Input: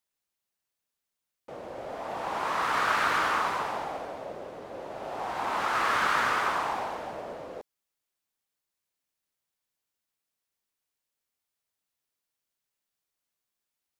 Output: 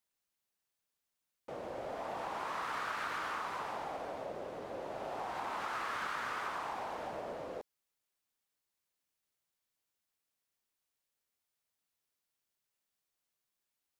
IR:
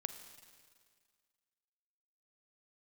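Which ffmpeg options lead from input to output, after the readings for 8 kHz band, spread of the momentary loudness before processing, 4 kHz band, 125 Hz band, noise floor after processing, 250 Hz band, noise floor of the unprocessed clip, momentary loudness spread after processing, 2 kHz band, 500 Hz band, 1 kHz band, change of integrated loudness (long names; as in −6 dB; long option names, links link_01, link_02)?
−11.0 dB, 17 LU, −11.0 dB, −7.5 dB, below −85 dBFS, −7.5 dB, below −85 dBFS, 7 LU, −11.5 dB, −6.5 dB, −10.0 dB, −11.0 dB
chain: -af "acompressor=threshold=-36dB:ratio=4,volume=-1.5dB"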